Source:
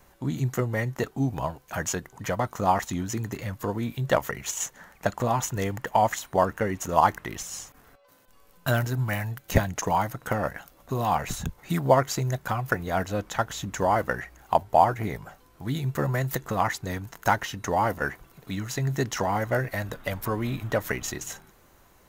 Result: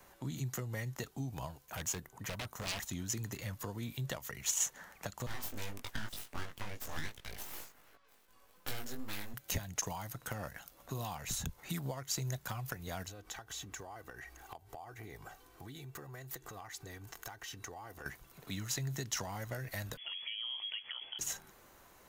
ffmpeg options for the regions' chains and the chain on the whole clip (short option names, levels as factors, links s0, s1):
-filter_complex "[0:a]asettb=1/sr,asplit=3[s0][s1][s2];[s0]atrim=end=1.664[s3];[s1]atrim=start=1.66:end=2.92,asetpts=PTS-STARTPTS,afade=t=in:d=0.004:c=qsin,afade=t=out:st=1.256:d=0.004:c=qsin,equalizer=f=4800:w=0.58:g=-6,aeval=exprs='0.0531*(abs(mod(val(0)/0.0531+3,4)-2)-1)':c=same[s4];[s2]atrim=start=2.916[s5];[s3][s4]acrossfade=d=0.004:c1=hsin:c2=qsin[s6];[s6][s5]acrossfade=d=0.004:c1=qsin:c2=hsin,asettb=1/sr,asplit=3[s7][s8][s9];[s7]atrim=end=5.264[s10];[s8]atrim=start=5.26:end=9.34,asetpts=PTS-STARTPTS,afade=t=in:d=0.004:c=qsin,afade=t=out:st=4.076:d=0.004:c=qsin,aeval=exprs='abs(val(0))':c=same,flanger=delay=18.5:depth=2.1:speed=2.6[s11];[s9]atrim=start=9.336[s12];[s10][s11]acrossfade=d=0.004:c1=hsin:c2=qsin[s13];[s13][s12]acrossfade=d=0.004:c1=qsin:c2=hsin,asettb=1/sr,asplit=3[s14][s15][s16];[s14]atrim=end=13.084[s17];[s15]atrim=start=13.08:end=18.06,asetpts=PTS-STARTPTS,afade=t=in:d=0.004:c=qsin,afade=t=out:st=4.976:d=0.004:c=qsin,acompressor=threshold=0.0112:ratio=5:attack=3.2:release=140:knee=1:detection=peak,aecho=1:1:2.6:0.46,atrim=end_sample=219618[s18];[s16]atrim=start=18.056[s19];[s17][s18]acrossfade=d=0.004:c1=hsin:c2=qsin[s20];[s20][s19]acrossfade=d=0.004:c1=qsin:c2=hsin,asettb=1/sr,asplit=3[s21][s22][s23];[s21]atrim=end=19.974[s24];[s22]atrim=start=19.97:end=21.19,asetpts=PTS-STARTPTS,afade=t=in:d=0.004:c=qsin,afade=t=out:st=1.216:d=0.004:c=qsin,equalizer=f=1900:w=5.6:g=-12.5,acompressor=threshold=0.0158:ratio=4:attack=3.2:release=140:knee=1:detection=peak,lowpass=f=2900:t=q:w=0.5098,lowpass=f=2900:t=q:w=0.6013,lowpass=f=2900:t=q:w=0.9,lowpass=f=2900:t=q:w=2.563,afreqshift=-3400[s25];[s23]atrim=start=21.186[s26];[s24][s25]acrossfade=d=0.004:c1=hsin:c2=qsin[s27];[s27][s26]acrossfade=d=0.004:c1=qsin:c2=hsin,acompressor=threshold=0.0562:ratio=5,lowshelf=f=230:g=-7.5,acrossover=split=160|3000[s28][s29][s30];[s29]acompressor=threshold=0.00282:ratio=2[s31];[s28][s31][s30]amix=inputs=3:normalize=0,volume=0.891"